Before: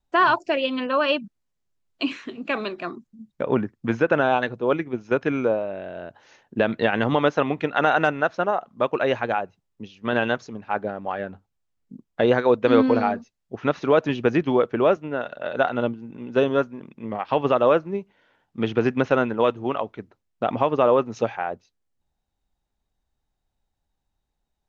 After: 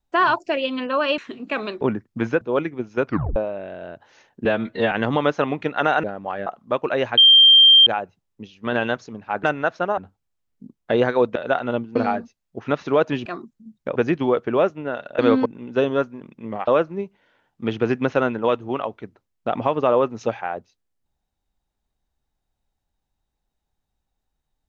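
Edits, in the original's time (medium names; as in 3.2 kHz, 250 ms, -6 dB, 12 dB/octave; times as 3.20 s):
1.18–2.16 s: delete
2.79–3.49 s: move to 14.22 s
4.09–4.55 s: delete
5.20 s: tape stop 0.30 s
6.59–6.90 s: stretch 1.5×
8.02–8.56 s: swap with 10.84–11.27 s
9.27 s: add tone 3.17 kHz -7.5 dBFS 0.69 s
12.65–12.92 s: swap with 15.45–16.05 s
17.27–17.63 s: delete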